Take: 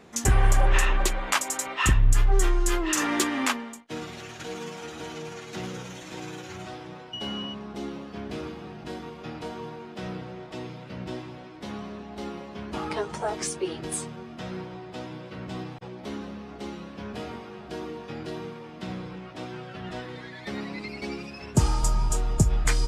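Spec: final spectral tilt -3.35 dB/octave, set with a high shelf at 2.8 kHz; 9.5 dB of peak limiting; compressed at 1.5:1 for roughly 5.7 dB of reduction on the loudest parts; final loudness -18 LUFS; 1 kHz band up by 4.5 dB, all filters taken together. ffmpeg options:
-af "equalizer=f=1000:t=o:g=4.5,highshelf=f=2800:g=8,acompressor=threshold=0.0316:ratio=1.5,volume=5.62,alimiter=limit=0.75:level=0:latency=1"

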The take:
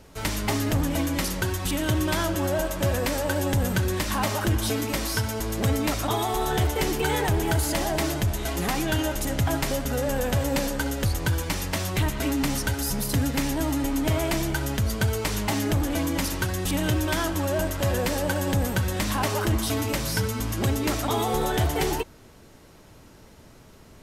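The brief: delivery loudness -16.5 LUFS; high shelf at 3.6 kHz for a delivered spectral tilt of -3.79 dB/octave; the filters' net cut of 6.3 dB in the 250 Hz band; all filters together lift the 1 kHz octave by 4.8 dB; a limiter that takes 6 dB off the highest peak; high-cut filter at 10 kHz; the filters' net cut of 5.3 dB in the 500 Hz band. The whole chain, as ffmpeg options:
-af "lowpass=10000,equalizer=f=250:t=o:g=-6,equalizer=f=500:t=o:g=-8.5,equalizer=f=1000:t=o:g=8.5,highshelf=f=3600:g=7,volume=2.99,alimiter=limit=0.473:level=0:latency=1"

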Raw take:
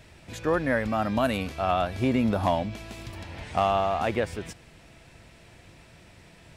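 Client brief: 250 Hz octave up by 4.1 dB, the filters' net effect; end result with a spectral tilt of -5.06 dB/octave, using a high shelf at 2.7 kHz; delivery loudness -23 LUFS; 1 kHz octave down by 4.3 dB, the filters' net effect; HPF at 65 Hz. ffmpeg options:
-af "highpass=65,equalizer=f=250:t=o:g=5,equalizer=f=1000:t=o:g=-8,highshelf=f=2700:g=6,volume=1.41"

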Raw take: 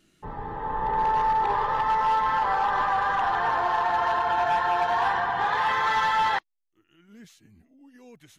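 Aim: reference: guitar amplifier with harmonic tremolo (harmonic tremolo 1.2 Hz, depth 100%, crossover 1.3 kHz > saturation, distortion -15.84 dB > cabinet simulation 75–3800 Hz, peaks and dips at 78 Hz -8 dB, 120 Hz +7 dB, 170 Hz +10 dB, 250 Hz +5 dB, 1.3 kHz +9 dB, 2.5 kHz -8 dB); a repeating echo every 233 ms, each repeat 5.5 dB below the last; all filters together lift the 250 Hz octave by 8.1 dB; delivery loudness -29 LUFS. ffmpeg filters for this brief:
-filter_complex "[0:a]equalizer=f=250:t=o:g=4,aecho=1:1:233|466|699|932|1165|1398|1631:0.531|0.281|0.149|0.079|0.0419|0.0222|0.0118,acrossover=split=1300[s0][s1];[s0]aeval=exprs='val(0)*(1-1/2+1/2*cos(2*PI*1.2*n/s))':c=same[s2];[s1]aeval=exprs='val(0)*(1-1/2-1/2*cos(2*PI*1.2*n/s))':c=same[s3];[s2][s3]amix=inputs=2:normalize=0,asoftclip=threshold=0.0794,highpass=75,equalizer=f=78:t=q:w=4:g=-8,equalizer=f=120:t=q:w=4:g=7,equalizer=f=170:t=q:w=4:g=10,equalizer=f=250:t=q:w=4:g=5,equalizer=f=1300:t=q:w=4:g=9,equalizer=f=2500:t=q:w=4:g=-8,lowpass=f=3800:w=0.5412,lowpass=f=3800:w=1.3066,volume=0.841"

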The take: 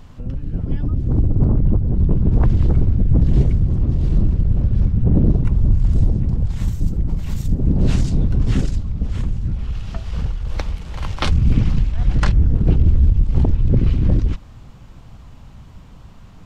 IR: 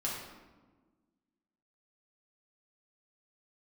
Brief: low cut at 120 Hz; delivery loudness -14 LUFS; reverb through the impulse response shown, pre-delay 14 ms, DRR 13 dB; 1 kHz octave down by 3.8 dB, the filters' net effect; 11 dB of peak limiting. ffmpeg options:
-filter_complex "[0:a]highpass=120,equalizer=f=1000:t=o:g=-5,alimiter=limit=0.141:level=0:latency=1,asplit=2[s0][s1];[1:a]atrim=start_sample=2205,adelay=14[s2];[s1][s2]afir=irnorm=-1:irlink=0,volume=0.141[s3];[s0][s3]amix=inputs=2:normalize=0,volume=4.47"

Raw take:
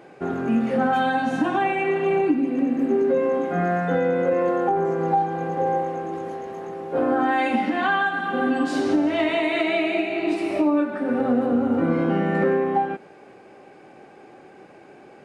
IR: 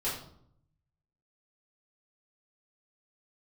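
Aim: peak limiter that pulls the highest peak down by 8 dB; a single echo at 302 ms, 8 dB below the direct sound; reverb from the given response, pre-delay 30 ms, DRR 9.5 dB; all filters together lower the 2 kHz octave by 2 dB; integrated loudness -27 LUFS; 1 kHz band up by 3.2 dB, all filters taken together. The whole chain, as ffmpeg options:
-filter_complex "[0:a]equalizer=f=1000:t=o:g=5.5,equalizer=f=2000:t=o:g=-5,alimiter=limit=0.168:level=0:latency=1,aecho=1:1:302:0.398,asplit=2[s0][s1];[1:a]atrim=start_sample=2205,adelay=30[s2];[s1][s2]afir=irnorm=-1:irlink=0,volume=0.168[s3];[s0][s3]amix=inputs=2:normalize=0,volume=0.631"

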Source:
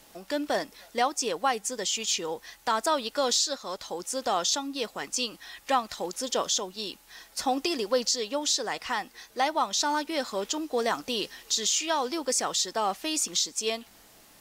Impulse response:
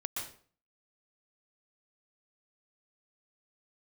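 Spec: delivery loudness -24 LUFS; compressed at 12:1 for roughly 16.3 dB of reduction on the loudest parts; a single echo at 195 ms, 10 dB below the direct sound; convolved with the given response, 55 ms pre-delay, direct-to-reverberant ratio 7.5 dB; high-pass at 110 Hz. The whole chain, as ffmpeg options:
-filter_complex "[0:a]highpass=110,acompressor=threshold=0.0141:ratio=12,aecho=1:1:195:0.316,asplit=2[s0][s1];[1:a]atrim=start_sample=2205,adelay=55[s2];[s1][s2]afir=irnorm=-1:irlink=0,volume=0.335[s3];[s0][s3]amix=inputs=2:normalize=0,volume=5.96"

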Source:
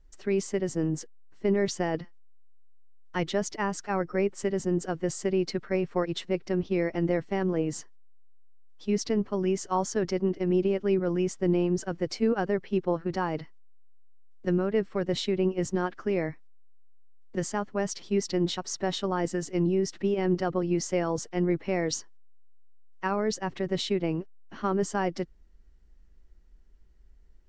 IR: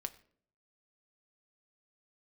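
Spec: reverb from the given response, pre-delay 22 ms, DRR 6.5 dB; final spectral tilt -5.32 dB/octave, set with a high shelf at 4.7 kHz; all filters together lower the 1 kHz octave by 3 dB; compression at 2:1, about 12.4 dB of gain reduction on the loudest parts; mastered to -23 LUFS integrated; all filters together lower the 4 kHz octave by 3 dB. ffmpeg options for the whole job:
-filter_complex "[0:a]equalizer=f=1000:t=o:g=-4,equalizer=f=4000:t=o:g=-8.5,highshelf=f=4700:g=8,acompressor=threshold=0.00562:ratio=2,asplit=2[s0][s1];[1:a]atrim=start_sample=2205,adelay=22[s2];[s1][s2]afir=irnorm=-1:irlink=0,volume=0.596[s3];[s0][s3]amix=inputs=2:normalize=0,volume=6.68"

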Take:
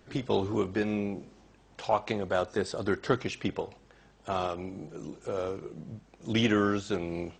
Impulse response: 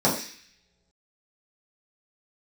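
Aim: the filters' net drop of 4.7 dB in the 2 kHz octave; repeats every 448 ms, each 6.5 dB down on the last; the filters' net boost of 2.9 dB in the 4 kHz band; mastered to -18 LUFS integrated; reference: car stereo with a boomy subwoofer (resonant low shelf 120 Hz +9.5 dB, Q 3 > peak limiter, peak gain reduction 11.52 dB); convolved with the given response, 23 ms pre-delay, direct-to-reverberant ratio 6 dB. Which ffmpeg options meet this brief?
-filter_complex "[0:a]equalizer=f=2000:t=o:g=-8.5,equalizer=f=4000:t=o:g=7.5,aecho=1:1:448|896|1344|1792|2240|2688:0.473|0.222|0.105|0.0491|0.0231|0.0109,asplit=2[s0][s1];[1:a]atrim=start_sample=2205,adelay=23[s2];[s1][s2]afir=irnorm=-1:irlink=0,volume=0.0794[s3];[s0][s3]amix=inputs=2:normalize=0,lowshelf=f=120:t=q:w=3:g=9.5,volume=5.31,alimiter=limit=0.376:level=0:latency=1"

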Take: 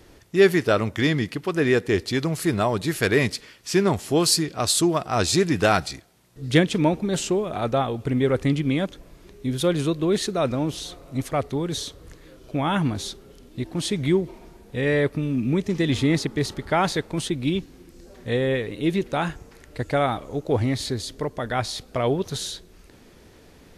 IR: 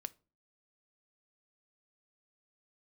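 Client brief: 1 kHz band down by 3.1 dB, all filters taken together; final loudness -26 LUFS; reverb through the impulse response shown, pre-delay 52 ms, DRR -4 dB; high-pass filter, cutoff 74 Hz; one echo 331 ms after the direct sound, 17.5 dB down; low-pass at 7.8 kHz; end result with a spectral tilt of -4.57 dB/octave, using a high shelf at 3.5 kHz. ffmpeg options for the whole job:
-filter_complex "[0:a]highpass=74,lowpass=7800,equalizer=f=1000:t=o:g=-5,highshelf=f=3500:g=4.5,aecho=1:1:331:0.133,asplit=2[s0][s1];[1:a]atrim=start_sample=2205,adelay=52[s2];[s1][s2]afir=irnorm=-1:irlink=0,volume=2.37[s3];[s0][s3]amix=inputs=2:normalize=0,volume=0.422"

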